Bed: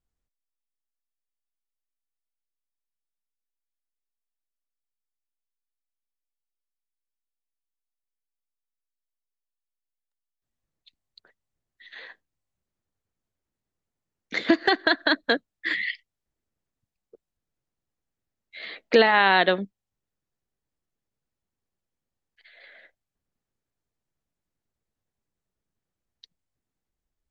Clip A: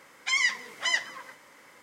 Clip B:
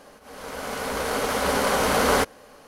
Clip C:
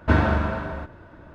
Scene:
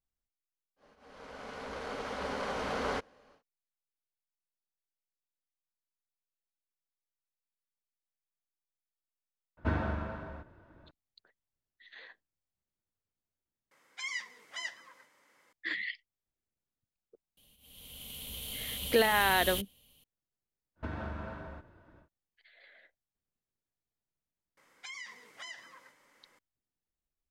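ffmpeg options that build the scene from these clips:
-filter_complex "[2:a]asplit=2[s0][s1];[3:a]asplit=2[s2][s3];[1:a]asplit=2[s4][s5];[0:a]volume=0.376[s6];[s0]lowpass=4600[s7];[s2]highshelf=f=3800:g=-4.5[s8];[s4]lowshelf=f=200:g=-5[s9];[s1]firequalizer=gain_entry='entry(110,0);entry(260,-13);entry(370,-20);entry(1500,-28);entry(3100,8);entry(5000,-12);entry(13000,10)':delay=0.05:min_phase=1[s10];[s3]acompressor=threshold=0.1:ratio=10:attack=7.8:release=261:knee=6:detection=peak[s11];[s5]acompressor=threshold=0.0355:ratio=6:attack=3.2:release=140:knee=1:detection=peak[s12];[s6]asplit=2[s13][s14];[s13]atrim=end=13.714[s15];[s9]atrim=end=1.82,asetpts=PTS-STARTPTS,volume=0.224[s16];[s14]atrim=start=15.526[s17];[s7]atrim=end=2.67,asetpts=PTS-STARTPTS,volume=0.211,afade=t=in:d=0.1,afade=t=out:st=2.57:d=0.1,adelay=760[s18];[s8]atrim=end=1.34,asetpts=PTS-STARTPTS,volume=0.237,afade=t=in:d=0.004:c=hsin,afade=t=out:st=1.336:d=0.004:c=hsin,adelay=9570[s19];[s10]atrim=end=2.67,asetpts=PTS-STARTPTS,volume=0.376,afade=t=in:d=0.004:c=hsin,afade=t=out:st=2.666:d=0.004:c=hsin,adelay=17370[s20];[s11]atrim=end=1.34,asetpts=PTS-STARTPTS,volume=0.211,afade=t=in:d=0.1,afade=t=out:st=1.24:d=0.1,adelay=20750[s21];[s12]atrim=end=1.82,asetpts=PTS-STARTPTS,volume=0.251,afade=t=in:d=0.004:c=hsin,afade=t=out:st=1.816:d=0.004:c=hsin,adelay=24570[s22];[s15][s16]acrossfade=d=0.004:c1=hsin:c2=hsin[s23];[s23][s17]acrossfade=d=0.004:c1=hsin:c2=hsin[s24];[s24][s18][s19][s20][s21][s22]amix=inputs=6:normalize=0"

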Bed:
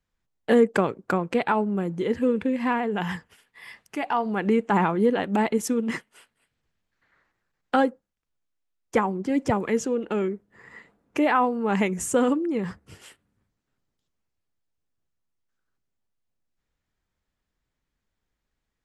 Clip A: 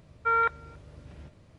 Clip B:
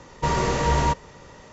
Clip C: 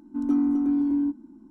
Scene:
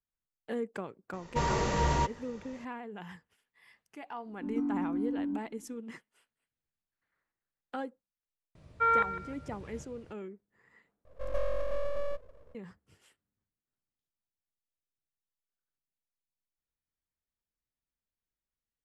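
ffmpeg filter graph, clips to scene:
-filter_complex "[3:a]asplit=2[s0][s1];[0:a]volume=0.141[s2];[1:a]aecho=1:1:154|308|462:0.2|0.0539|0.0145[s3];[s1]aeval=exprs='abs(val(0))':c=same[s4];[s2]asplit=2[s5][s6];[s5]atrim=end=11.054[s7];[s4]atrim=end=1.5,asetpts=PTS-STARTPTS,volume=0.531[s8];[s6]atrim=start=12.546[s9];[2:a]atrim=end=1.52,asetpts=PTS-STARTPTS,volume=0.447,afade=t=in:d=0.004:c=hsin,afade=t=out:st=1.516:d=0.004:c=hsin,adelay=1130[s10];[s0]atrim=end=1.5,asetpts=PTS-STARTPTS,volume=0.316,afade=t=in:d=0.004:c=hsin,afade=t=out:st=1.496:d=0.004:c=hsin,adelay=4270[s11];[s3]atrim=end=1.58,asetpts=PTS-STARTPTS,volume=0.841,afade=t=in:d=0.004:c=hsin,afade=t=out:st=1.576:d=0.004:c=hsin,adelay=8550[s12];[s7][s8]acrossfade=d=0.004:c1=hsin:c2=hsin[s13];[s13][s9]acrossfade=d=0.004:c1=hsin:c2=hsin[s14];[s14][s10][s11][s12]amix=inputs=4:normalize=0"

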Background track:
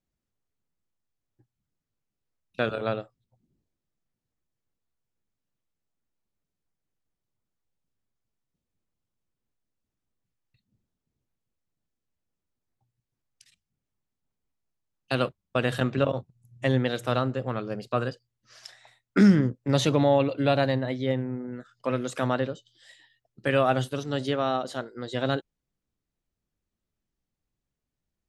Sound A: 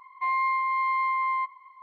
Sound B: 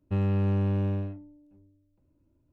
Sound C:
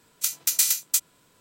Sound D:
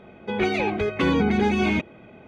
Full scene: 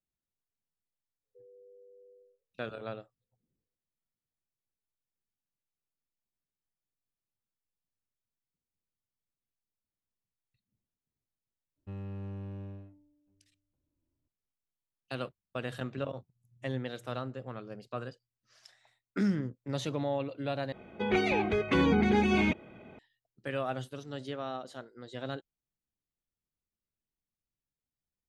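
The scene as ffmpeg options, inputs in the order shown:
-filter_complex "[2:a]asplit=2[s0][s1];[0:a]volume=0.266[s2];[s0]asuperpass=centerf=470:order=12:qfactor=3.9[s3];[s2]asplit=2[s4][s5];[s4]atrim=end=20.724[s6];[4:a]atrim=end=2.27,asetpts=PTS-STARTPTS,volume=0.596[s7];[s5]atrim=start=22.986[s8];[s3]atrim=end=2.52,asetpts=PTS-STARTPTS,volume=0.282,afade=t=in:d=0.004:c=hsin,afade=t=out:st=2.516:d=0.004:c=hsin,adelay=1230[s9];[s1]atrim=end=2.52,asetpts=PTS-STARTPTS,volume=0.178,afade=t=in:d=0.004:c=hsin,afade=t=out:st=2.516:d=0.004:c=hsin,adelay=11760[s10];[s6][s7]acrossfade=d=0.004:c1=hsin:c2=hsin[s11];[s11][s8]acrossfade=d=0.004:c1=hsin:c2=hsin[s12];[s12][s9][s10]amix=inputs=3:normalize=0"

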